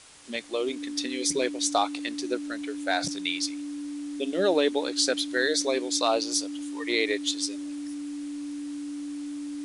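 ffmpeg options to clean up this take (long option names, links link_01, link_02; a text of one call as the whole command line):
ffmpeg -i in.wav -af "bandreject=frequency=290:width=30,afwtdn=0.0035" out.wav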